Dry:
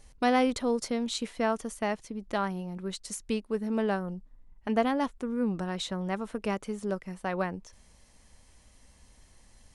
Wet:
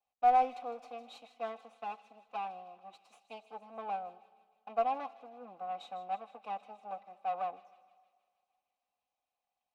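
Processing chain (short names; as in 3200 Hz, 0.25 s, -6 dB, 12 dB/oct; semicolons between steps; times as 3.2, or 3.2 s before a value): minimum comb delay 4 ms; vowel filter a; low shelf 240 Hz -5 dB; small resonant body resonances 850/2000/3800 Hz, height 11 dB, ringing for 45 ms; in parallel at -7 dB: one-sided clip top -31 dBFS; on the sum: thin delay 0.157 s, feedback 75%, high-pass 3000 Hz, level -11 dB; digital reverb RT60 3 s, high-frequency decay 0.45×, pre-delay 30 ms, DRR 18 dB; three-band expander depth 40%; gain -2.5 dB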